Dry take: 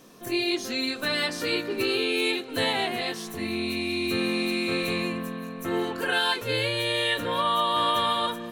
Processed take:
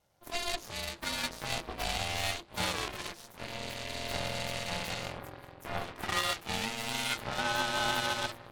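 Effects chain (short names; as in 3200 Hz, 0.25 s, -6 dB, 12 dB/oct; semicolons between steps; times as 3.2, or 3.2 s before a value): added harmonics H 3 -14 dB, 5 -45 dB, 7 -27 dB, 8 -22 dB, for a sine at -13 dBFS; ring modulator 340 Hz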